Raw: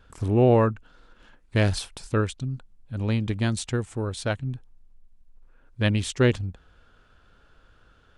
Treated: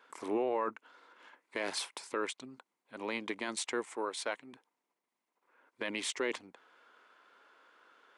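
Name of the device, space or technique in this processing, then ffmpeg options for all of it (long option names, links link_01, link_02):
laptop speaker: -filter_complex "[0:a]asettb=1/sr,asplit=3[link_01][link_02][link_03];[link_01]atrim=end=3.894[link_04];[link_02]atrim=start=3.89:end=4.53,asetpts=PTS-STARTPTS,afade=type=in:duration=0.004:curve=qsin,afade=type=out:start_time=0.636:duration=0.004:curve=qsin,lowshelf=frequency=160:gain=-11.5[link_05];[link_03]atrim=start=4.526[link_06];[link_04][link_05]acrossfade=duration=0.004:curve1=hsin:curve2=qsin[link_07];[link_07][link_06]acrossfade=duration=0.004:curve1=qsin:curve2=hsin,highpass=frequency=310:width=0.5412,highpass=frequency=310:width=1.3066,equalizer=frequency=1000:width_type=o:width=0.49:gain=9,equalizer=frequency=2100:width_type=o:width=0.33:gain=9.5,alimiter=limit=-20dB:level=0:latency=1:release=16,volume=-4dB"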